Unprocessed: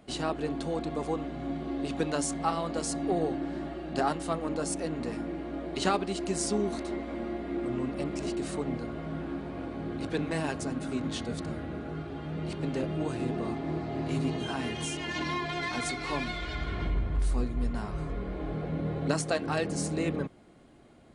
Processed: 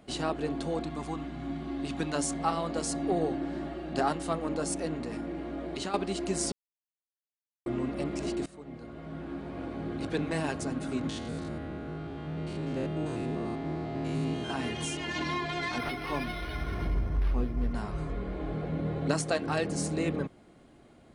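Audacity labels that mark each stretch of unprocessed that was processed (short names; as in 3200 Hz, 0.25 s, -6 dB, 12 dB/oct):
0.850000	2.140000	bell 500 Hz -14.5 dB -> -8 dB 0.65 oct
4.960000	5.940000	compressor, threshold -31 dBFS
6.520000	7.660000	mute
8.460000	9.700000	fade in, from -20 dB
11.090000	14.500000	stepped spectrum every 0.1 s
15.780000	17.730000	decimation joined by straight lines rate divided by 6×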